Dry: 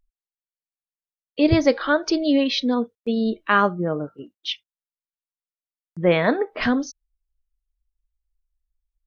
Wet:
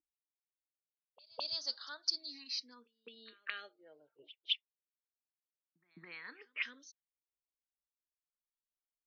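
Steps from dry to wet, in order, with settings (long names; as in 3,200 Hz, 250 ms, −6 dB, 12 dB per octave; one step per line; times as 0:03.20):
envelope filter 310–4,600 Hz, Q 6, up, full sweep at −22 dBFS
echo ahead of the sound 211 ms −23 dB
frequency shifter mixed with the dry sound +0.28 Hz
level +1 dB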